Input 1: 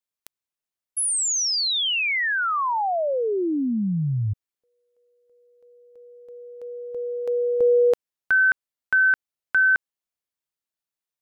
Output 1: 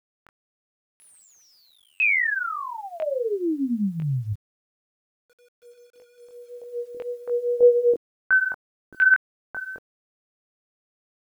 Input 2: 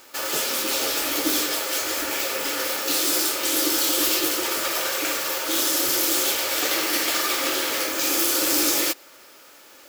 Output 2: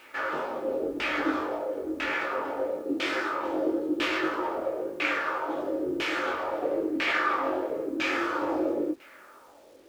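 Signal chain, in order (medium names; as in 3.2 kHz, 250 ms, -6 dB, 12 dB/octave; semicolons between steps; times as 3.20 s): LFO low-pass saw down 1 Hz 290–2600 Hz; chorus 1.8 Hz, delay 19.5 ms, depth 2.8 ms; word length cut 10-bit, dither none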